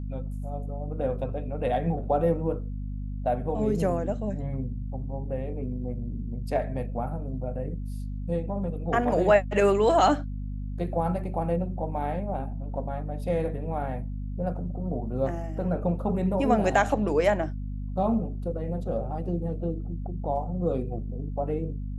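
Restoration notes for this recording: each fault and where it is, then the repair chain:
mains hum 50 Hz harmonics 5 −33 dBFS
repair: hum removal 50 Hz, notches 5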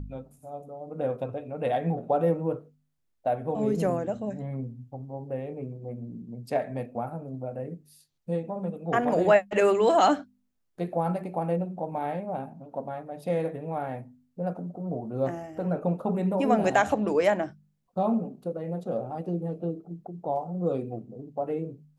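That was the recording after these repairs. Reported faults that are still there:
none of them is left

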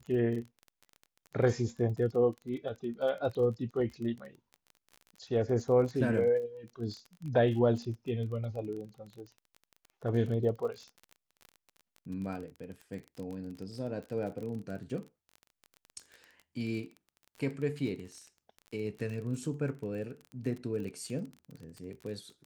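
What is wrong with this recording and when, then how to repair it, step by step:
surface crackle 25 per second −39 dBFS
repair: click removal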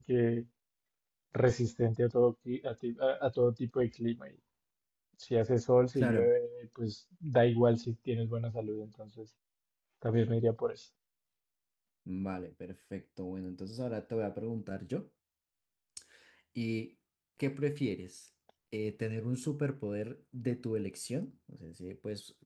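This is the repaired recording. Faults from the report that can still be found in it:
none of them is left

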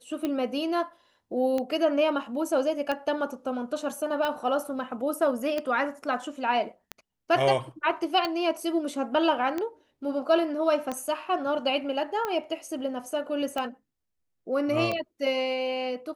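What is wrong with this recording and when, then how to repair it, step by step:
scratch tick 45 rpm −16 dBFS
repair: click removal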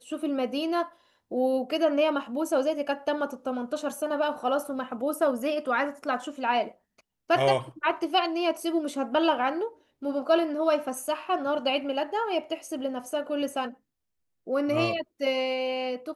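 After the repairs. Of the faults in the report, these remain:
none of them is left

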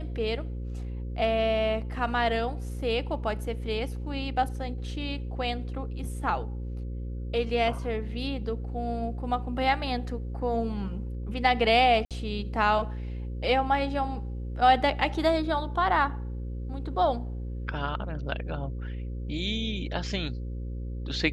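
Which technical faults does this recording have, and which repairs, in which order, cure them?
mains buzz 60 Hz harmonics 9 −34 dBFS
0:12.05–0:12.11: drop-out 57 ms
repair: hum removal 60 Hz, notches 9
repair the gap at 0:12.05, 57 ms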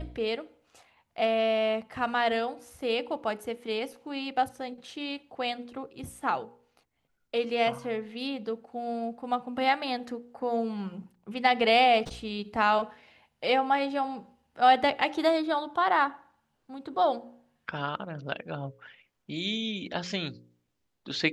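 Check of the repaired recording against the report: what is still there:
none of them is left

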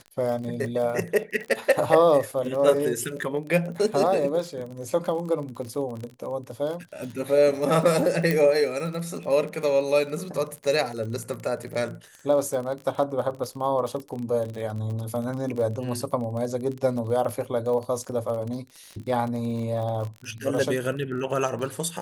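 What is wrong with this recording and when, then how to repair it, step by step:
surface crackle 34 per second −31 dBFS
0:08.31: click −10 dBFS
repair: click removal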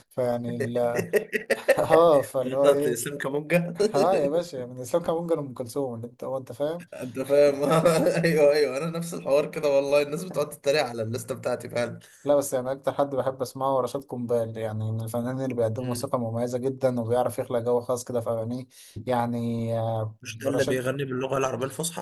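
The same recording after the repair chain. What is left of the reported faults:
none of them is left

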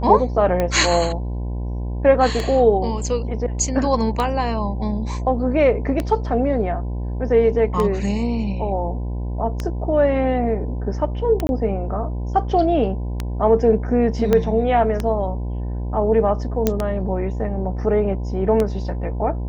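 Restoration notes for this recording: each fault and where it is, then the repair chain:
mains buzz 60 Hz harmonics 17 −25 dBFS
scratch tick 33 1/3 rpm −9 dBFS
0:11.47–0:11.49: drop-out 21 ms
0:14.33: click −6 dBFS
0:16.67: click −4 dBFS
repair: click removal
hum removal 60 Hz, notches 17
repair the gap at 0:11.47, 21 ms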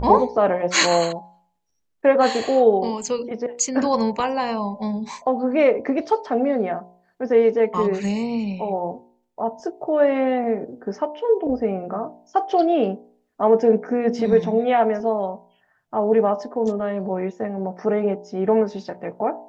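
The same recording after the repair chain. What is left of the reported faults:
0:14.33: click

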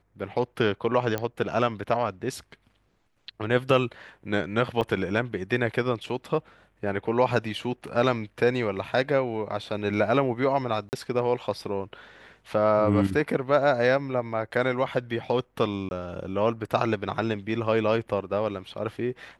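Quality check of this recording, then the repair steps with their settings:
0:01.18: click −14 dBFS
0:04.81–0:04.82: drop-out 6.2 ms
0:10.89–0:10.93: drop-out 39 ms
0:15.89–0:15.91: drop-out 21 ms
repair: click removal
repair the gap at 0:04.81, 6.2 ms
repair the gap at 0:10.89, 39 ms
repair the gap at 0:15.89, 21 ms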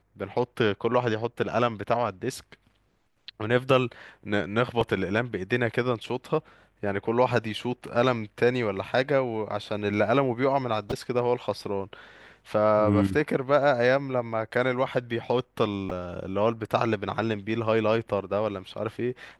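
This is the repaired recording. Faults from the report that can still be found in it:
none of them is left

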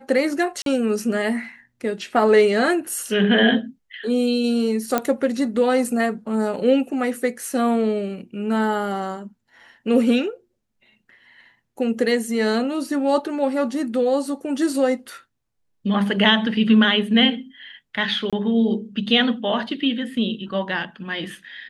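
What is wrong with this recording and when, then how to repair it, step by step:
0:00.62–0:00.66: drop-out 42 ms
0:04.98: click −6 dBFS
0:18.30–0:18.33: drop-out 26 ms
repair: click removal
repair the gap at 0:00.62, 42 ms
repair the gap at 0:18.30, 26 ms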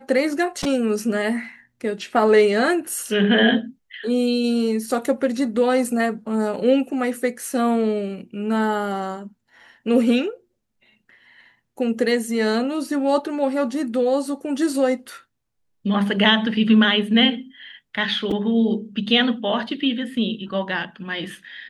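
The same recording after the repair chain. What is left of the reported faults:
none of them is left

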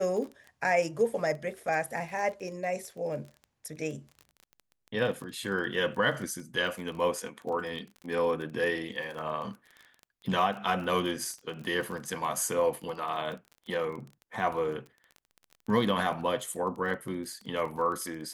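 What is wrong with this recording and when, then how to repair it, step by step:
surface crackle 24 per second −37 dBFS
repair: click removal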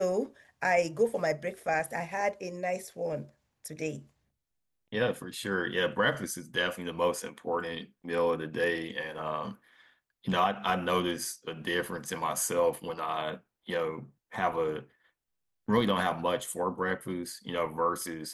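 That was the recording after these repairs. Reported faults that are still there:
none of them is left

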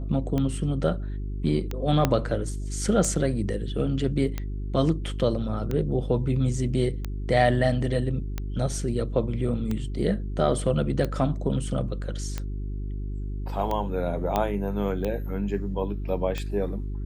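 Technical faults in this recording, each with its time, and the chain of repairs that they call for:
mains hum 50 Hz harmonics 8 −31 dBFS
scratch tick 45 rpm −16 dBFS
0:02.05: click −7 dBFS
0:14.36: click −11 dBFS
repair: click removal
hum removal 50 Hz, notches 8

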